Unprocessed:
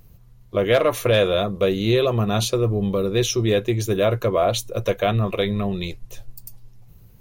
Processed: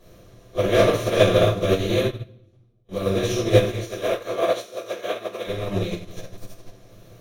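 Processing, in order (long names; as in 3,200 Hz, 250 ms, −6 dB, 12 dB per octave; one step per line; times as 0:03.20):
compressor on every frequency bin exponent 0.4
0:02.01–0:02.89: gate with flip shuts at −8 dBFS, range −39 dB
0:03.62–0:05.47: high-pass filter 410 Hz 12 dB per octave
convolution reverb RT60 0.85 s, pre-delay 3 ms, DRR −13 dB
expander for the loud parts 2.5 to 1, over −6 dBFS
level −17 dB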